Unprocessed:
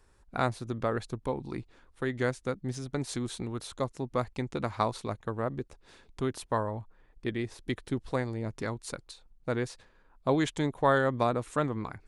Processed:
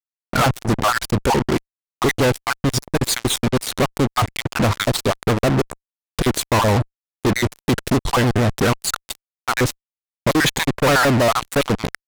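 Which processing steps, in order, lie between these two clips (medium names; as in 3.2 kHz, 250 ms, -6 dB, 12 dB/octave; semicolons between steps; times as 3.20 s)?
random holes in the spectrogram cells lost 39%; fuzz box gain 48 dB, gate -43 dBFS; vibrato with a chosen wave saw down 6.8 Hz, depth 160 cents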